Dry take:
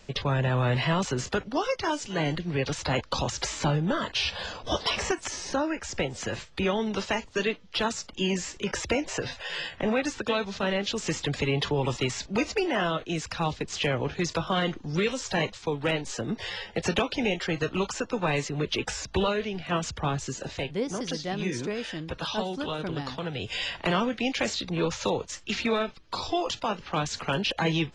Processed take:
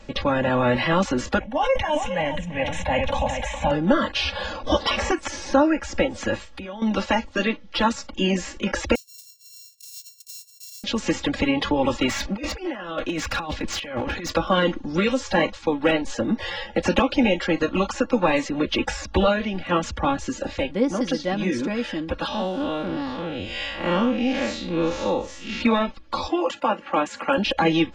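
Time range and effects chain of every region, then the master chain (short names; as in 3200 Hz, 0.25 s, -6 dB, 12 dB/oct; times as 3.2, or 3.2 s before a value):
1.39–3.71 fixed phaser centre 1300 Hz, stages 6 + echo 0.411 s -9.5 dB + sustainer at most 42 dB/s
6.36–6.82 high shelf 7200 Hz +10.5 dB + compressor 10:1, threshold -38 dBFS
8.95–10.84 sample sorter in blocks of 32 samples + inverse Chebyshev high-pass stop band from 1400 Hz, stop band 70 dB
12.08–14.32 bell 2000 Hz +4 dB 2.2 oct + negative-ratio compressor -31 dBFS, ratio -0.5 + hard clip -26.5 dBFS
22.28–25.61 time blur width 0.127 s + mismatched tape noise reduction encoder only
26.28–27.38 HPF 250 Hz + band shelf 4500 Hz -8.5 dB 1.1 oct
whole clip: high shelf 3400 Hz -11 dB; comb 3.6 ms, depth 83%; gain +6 dB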